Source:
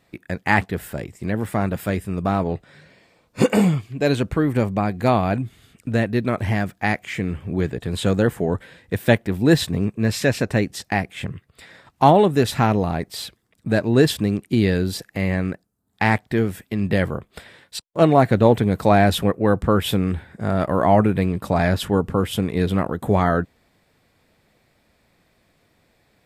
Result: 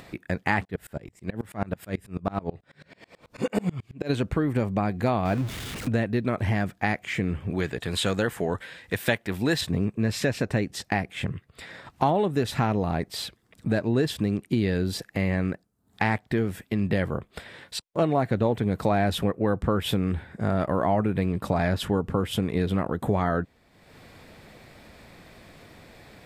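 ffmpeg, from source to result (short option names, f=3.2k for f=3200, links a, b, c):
-filter_complex "[0:a]asplit=3[a][b][c];[a]afade=t=out:st=0.63:d=0.02[d];[b]aeval=exprs='val(0)*pow(10,-29*if(lt(mod(-9.2*n/s,1),2*abs(-9.2)/1000),1-mod(-9.2*n/s,1)/(2*abs(-9.2)/1000),(mod(-9.2*n/s,1)-2*abs(-9.2)/1000)/(1-2*abs(-9.2)/1000))/20)':c=same,afade=t=in:st=0.63:d=0.02,afade=t=out:st=4.09:d=0.02[e];[c]afade=t=in:st=4.09:d=0.02[f];[d][e][f]amix=inputs=3:normalize=0,asettb=1/sr,asplit=3[g][h][i];[g]atrim=end=5.254[j];[h]atrim=start=5.25:end=5.88,asetpts=PTS-STARTPTS,afade=t=in:d=0.004:c=qsin,afade=t=out:st=0.626:d=0.004:c=qsin,aeval=exprs='val(0)+0.5*0.0335*sgn(val(0))':c=same[k];[i]atrim=start=5.876[l];[j][k]acrossfade=d=0.004:c1=hsin:c2=qsin[m];[m][l]acrossfade=d=0.004:c1=qsin:c2=hsin,asettb=1/sr,asplit=3[n][o][p];[n]atrim=end=7.504[q];[o]atrim=start=7.5:end=9.61,asetpts=PTS-STARTPTS,afade=t=in:d=0.004:c=qsin,afade=t=out:st=2.106:d=0.004:c=qsin,tiltshelf=f=740:g=-6[r];[p]atrim=start=9.606[s];[q][r]acrossfade=d=0.004:c1=hsin:c2=qsin[t];[t][s]acrossfade=d=0.004:c1=qsin:c2=hsin,acompressor=threshold=-22dB:ratio=3,highshelf=f=6.7k:g=-5.5,acompressor=mode=upward:threshold=-36dB:ratio=2.5"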